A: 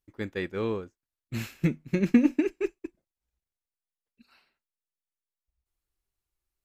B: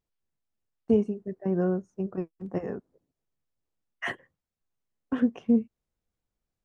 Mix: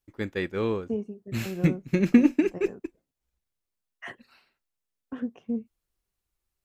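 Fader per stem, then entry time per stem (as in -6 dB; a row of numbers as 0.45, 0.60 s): +2.5, -8.0 dB; 0.00, 0.00 s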